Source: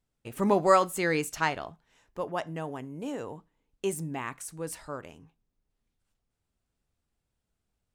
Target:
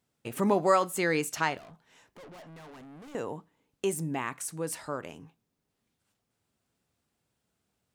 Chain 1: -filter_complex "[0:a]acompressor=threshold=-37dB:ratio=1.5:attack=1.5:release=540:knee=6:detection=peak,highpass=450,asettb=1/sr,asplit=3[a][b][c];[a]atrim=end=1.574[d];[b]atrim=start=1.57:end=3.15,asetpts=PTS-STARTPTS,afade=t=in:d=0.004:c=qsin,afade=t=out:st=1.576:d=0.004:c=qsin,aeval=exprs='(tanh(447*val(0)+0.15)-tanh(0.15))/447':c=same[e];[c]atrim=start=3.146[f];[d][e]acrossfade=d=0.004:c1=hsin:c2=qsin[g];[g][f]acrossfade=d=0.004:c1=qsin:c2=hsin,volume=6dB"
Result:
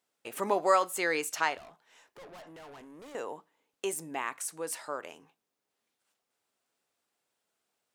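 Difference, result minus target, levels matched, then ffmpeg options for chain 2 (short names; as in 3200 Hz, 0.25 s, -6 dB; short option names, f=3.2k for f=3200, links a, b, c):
125 Hz band -14.0 dB
-filter_complex "[0:a]acompressor=threshold=-37dB:ratio=1.5:attack=1.5:release=540:knee=6:detection=peak,highpass=120,asettb=1/sr,asplit=3[a][b][c];[a]atrim=end=1.574[d];[b]atrim=start=1.57:end=3.15,asetpts=PTS-STARTPTS,afade=t=in:d=0.004:c=qsin,afade=t=out:st=1.576:d=0.004:c=qsin,aeval=exprs='(tanh(447*val(0)+0.15)-tanh(0.15))/447':c=same[e];[c]atrim=start=3.146[f];[d][e]acrossfade=d=0.004:c1=hsin:c2=qsin[g];[g][f]acrossfade=d=0.004:c1=qsin:c2=hsin,volume=6dB"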